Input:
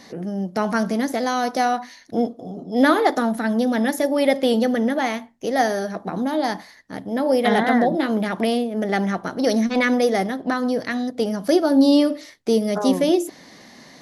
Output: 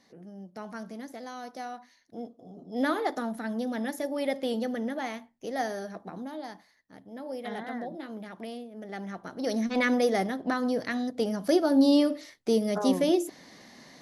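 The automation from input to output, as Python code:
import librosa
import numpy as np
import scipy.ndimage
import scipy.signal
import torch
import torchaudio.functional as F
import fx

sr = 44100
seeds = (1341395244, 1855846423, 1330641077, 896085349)

y = fx.gain(x, sr, db=fx.line((2.19, -18.5), (2.72, -11.5), (5.95, -11.5), (6.53, -18.5), (8.83, -18.5), (9.85, -6.0)))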